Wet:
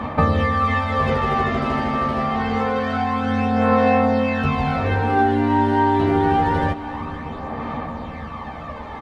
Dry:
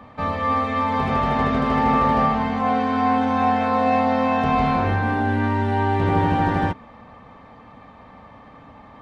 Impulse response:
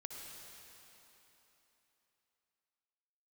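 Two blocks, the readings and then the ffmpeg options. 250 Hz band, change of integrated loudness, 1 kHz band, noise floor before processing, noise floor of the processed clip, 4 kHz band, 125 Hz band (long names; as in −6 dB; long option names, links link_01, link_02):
+1.5 dB, +0.5 dB, 0.0 dB, −46 dBFS, −32 dBFS, +2.0 dB, +1.5 dB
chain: -filter_complex "[0:a]acompressor=threshold=-28dB:ratio=10,aphaser=in_gain=1:out_gain=1:delay=3.2:decay=0.5:speed=0.26:type=sinusoidal,asplit=2[link_01][link_02];[link_02]adelay=13,volume=-3dB[link_03];[link_01][link_03]amix=inputs=2:normalize=0,asplit=2[link_04][link_05];[1:a]atrim=start_sample=2205,asetrate=29988,aresample=44100[link_06];[link_05][link_06]afir=irnorm=-1:irlink=0,volume=-8.5dB[link_07];[link_04][link_07]amix=inputs=2:normalize=0,volume=8dB"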